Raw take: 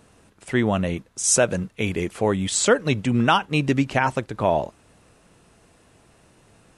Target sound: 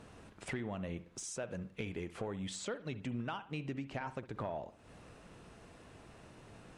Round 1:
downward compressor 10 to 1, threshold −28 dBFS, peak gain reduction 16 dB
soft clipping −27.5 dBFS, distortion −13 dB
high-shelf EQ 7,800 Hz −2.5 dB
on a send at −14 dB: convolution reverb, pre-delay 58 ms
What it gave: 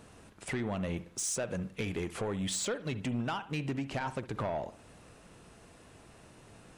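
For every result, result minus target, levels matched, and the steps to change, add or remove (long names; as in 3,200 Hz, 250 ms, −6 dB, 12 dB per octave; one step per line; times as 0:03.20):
downward compressor: peak gain reduction −7.5 dB; 8,000 Hz band +4.0 dB
change: downward compressor 10 to 1, threshold −36.5 dBFS, peak gain reduction 24 dB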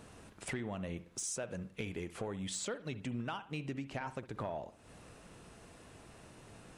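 8,000 Hz band +4.5 dB
change: high-shelf EQ 7,800 Hz −14 dB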